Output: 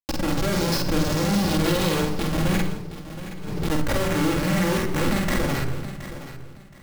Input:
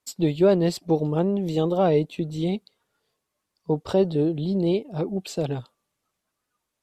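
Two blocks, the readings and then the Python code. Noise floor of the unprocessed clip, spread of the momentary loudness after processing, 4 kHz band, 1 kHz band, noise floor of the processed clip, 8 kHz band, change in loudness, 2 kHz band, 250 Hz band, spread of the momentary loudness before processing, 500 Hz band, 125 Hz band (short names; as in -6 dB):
-82 dBFS, 15 LU, +9.5 dB, +4.0 dB, -43 dBFS, n/a, 0.0 dB, +14.5 dB, +1.0 dB, 9 LU, -4.0 dB, +2.5 dB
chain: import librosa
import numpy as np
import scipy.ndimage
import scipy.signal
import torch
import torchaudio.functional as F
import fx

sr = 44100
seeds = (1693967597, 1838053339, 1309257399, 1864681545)

p1 = fx.delta_hold(x, sr, step_db=-26.5)
p2 = fx.dynamic_eq(p1, sr, hz=110.0, q=1.2, threshold_db=-39.0, ratio=4.0, max_db=4)
p3 = fx.auto_swell(p2, sr, attack_ms=113.0)
p4 = fx.filter_sweep_lowpass(p3, sr, from_hz=5400.0, to_hz=2000.0, start_s=1.19, end_s=2.86, q=7.3)
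p5 = fx.spec_erase(p4, sr, start_s=1.09, length_s=1.37, low_hz=550.0, high_hz=2600.0)
p6 = fx.schmitt(p5, sr, flips_db=-34.0)
p7 = fx.doubler(p6, sr, ms=49.0, db=-3)
p8 = p7 + fx.echo_feedback(p7, sr, ms=721, feedback_pct=24, wet_db=-13.0, dry=0)
p9 = fx.room_shoebox(p8, sr, seeds[0], volume_m3=3800.0, walls='furnished', distance_m=2.3)
y = fx.pre_swell(p9, sr, db_per_s=34.0)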